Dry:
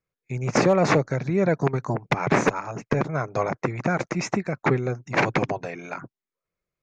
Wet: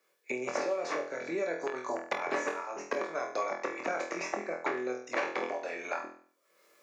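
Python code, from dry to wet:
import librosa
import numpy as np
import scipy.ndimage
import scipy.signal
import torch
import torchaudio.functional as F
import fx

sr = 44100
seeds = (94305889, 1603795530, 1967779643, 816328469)

p1 = scipy.signal.sosfilt(scipy.signal.butter(4, 320.0, 'highpass', fs=sr, output='sos'), x)
p2 = fx.rider(p1, sr, range_db=5, speed_s=2.0)
p3 = fx.comb_fb(p2, sr, f0_hz=570.0, decay_s=0.26, harmonics='all', damping=0.0, mix_pct=80)
p4 = p3 + fx.room_flutter(p3, sr, wall_m=4.1, rt60_s=0.39, dry=0)
y = fx.band_squash(p4, sr, depth_pct=100)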